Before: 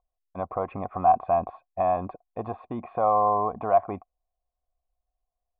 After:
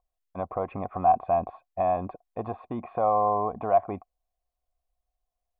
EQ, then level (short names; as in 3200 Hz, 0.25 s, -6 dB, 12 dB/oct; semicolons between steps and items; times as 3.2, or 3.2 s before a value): dynamic EQ 1200 Hz, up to -4 dB, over -37 dBFS, Q 1.5; 0.0 dB